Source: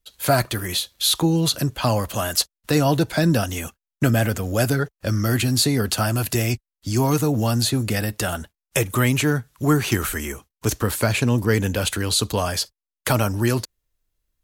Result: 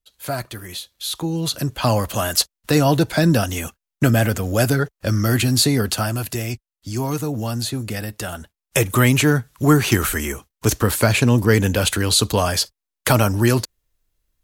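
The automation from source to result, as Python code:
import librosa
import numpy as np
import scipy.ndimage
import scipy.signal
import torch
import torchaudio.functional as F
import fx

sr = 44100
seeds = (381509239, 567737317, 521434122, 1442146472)

y = fx.gain(x, sr, db=fx.line((1.06, -7.5), (1.9, 2.5), (5.74, 2.5), (6.38, -4.0), (8.37, -4.0), (8.85, 4.0)))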